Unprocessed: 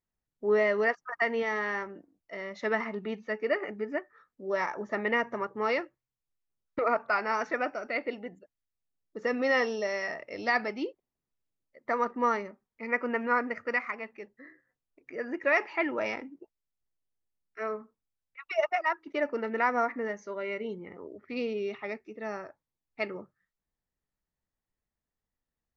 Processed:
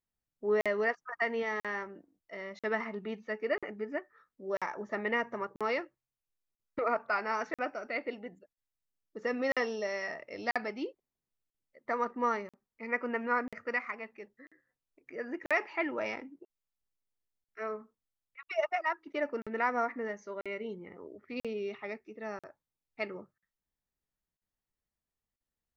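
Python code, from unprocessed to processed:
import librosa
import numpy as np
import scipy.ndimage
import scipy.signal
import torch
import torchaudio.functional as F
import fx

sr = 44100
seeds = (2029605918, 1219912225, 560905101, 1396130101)

y = fx.buffer_crackle(x, sr, first_s=0.61, period_s=0.99, block=2048, kind='zero')
y = F.gain(torch.from_numpy(y), -3.5).numpy()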